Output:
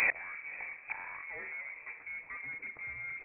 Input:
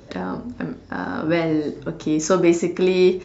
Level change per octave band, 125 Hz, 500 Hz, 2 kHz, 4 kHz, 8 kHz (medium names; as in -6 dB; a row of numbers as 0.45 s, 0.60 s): under -30 dB, -34.0 dB, -2.5 dB, under -20 dB, no reading